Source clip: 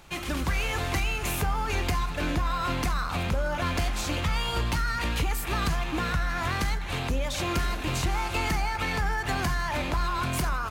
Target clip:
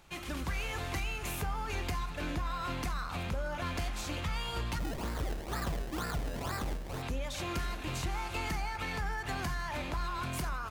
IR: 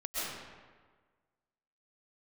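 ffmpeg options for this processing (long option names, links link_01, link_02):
-filter_complex "[0:a]asplit=3[link_01][link_02][link_03];[link_01]afade=type=out:start_time=4.78:duration=0.02[link_04];[link_02]acrusher=samples=27:mix=1:aa=0.000001:lfo=1:lforange=27:lforate=2.1,afade=type=in:start_time=4.78:duration=0.02,afade=type=out:start_time=7.01:duration=0.02[link_05];[link_03]afade=type=in:start_time=7.01:duration=0.02[link_06];[link_04][link_05][link_06]amix=inputs=3:normalize=0,volume=-8dB"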